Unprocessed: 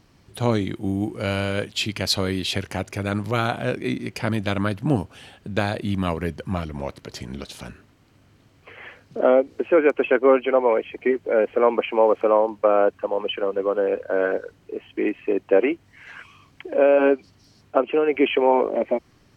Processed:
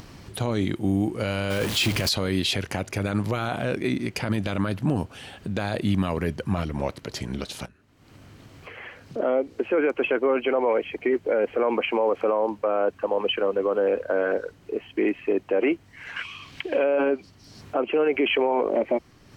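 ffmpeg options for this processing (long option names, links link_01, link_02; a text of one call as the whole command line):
ffmpeg -i in.wav -filter_complex "[0:a]asettb=1/sr,asplit=3[link_01][link_02][link_03];[link_01]atrim=end=1.504[link_04];[link_02]atrim=start=1.5:end=2.09,asetpts=PTS-STARTPTS,afade=type=in:duration=0.004:curve=qsin,afade=type=out:start_time=0.586:duration=0.004:curve=qsin,aeval=exprs='val(0)+0.5*0.0501*sgn(val(0))':channel_layout=same[link_05];[link_03]atrim=start=2.086[link_06];[link_04][link_05]acrossfade=duration=0.004:curve1=hsin:curve2=qsin[link_07];[link_07][link_06]acrossfade=duration=0.004:curve1=qsin:curve2=hsin,asettb=1/sr,asplit=3[link_08][link_09][link_10];[link_08]atrim=end=16.164[link_11];[link_09]atrim=start=16.16:end=16.84,asetpts=PTS-STARTPTS,afade=type=in:duration=0.004:curve=qsin,afade=type=out:start_time=0.676:duration=0.004:curve=qsin,equalizer=frequency=3100:width_type=o:width=1.7:gain=12[link_12];[link_10]atrim=start=16.836[link_13];[link_11][link_12]acrossfade=duration=0.004:curve1=hsin:curve2=qsin[link_14];[link_14][link_13]acrossfade=duration=0.004:curve1=qsin:curve2=hsin,asplit=2[link_15][link_16];[link_15]atrim=end=7.66,asetpts=PTS-STARTPTS,afade=type=out:start_time=7.656:duration=0.004:curve=hsin:silence=0.112202[link_17];[link_16]atrim=start=7.66,asetpts=PTS-STARTPTS,afade=type=in:duration=2.21:silence=0.112202[link_18];[link_17][link_18]concat=n=2:v=0:a=1,alimiter=limit=-16.5dB:level=0:latency=1:release=34,acompressor=mode=upward:threshold=-37dB:ratio=2.5,volume=2.5dB" out.wav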